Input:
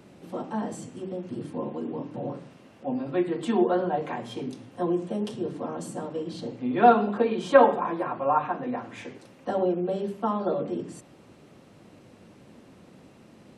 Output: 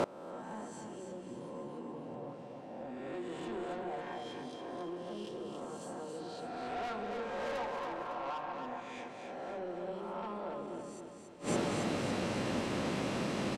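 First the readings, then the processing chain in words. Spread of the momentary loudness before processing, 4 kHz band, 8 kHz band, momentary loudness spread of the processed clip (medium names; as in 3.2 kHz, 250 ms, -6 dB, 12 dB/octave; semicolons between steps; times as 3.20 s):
17 LU, -1.0 dB, no reading, 11 LU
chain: reverse spectral sustain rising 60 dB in 1.28 s; low-pass 8.3 kHz 12 dB/octave; bass shelf 380 Hz -6.5 dB; in parallel at +1 dB: compression, threshold -35 dBFS, peak gain reduction 22.5 dB; on the sum: saturation -20.5 dBFS, distortion -7 dB; feedback delay 278 ms, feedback 48%, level -5 dB; inverted gate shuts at -30 dBFS, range -25 dB; trim +9.5 dB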